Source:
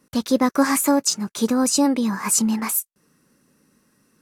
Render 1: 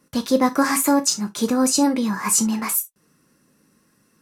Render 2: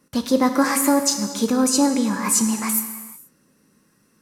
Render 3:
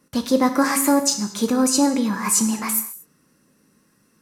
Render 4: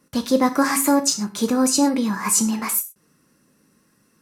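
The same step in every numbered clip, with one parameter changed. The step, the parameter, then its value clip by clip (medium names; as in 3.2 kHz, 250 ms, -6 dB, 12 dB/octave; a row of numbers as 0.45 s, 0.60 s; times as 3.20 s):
gated-style reverb, gate: 90 ms, 500 ms, 260 ms, 140 ms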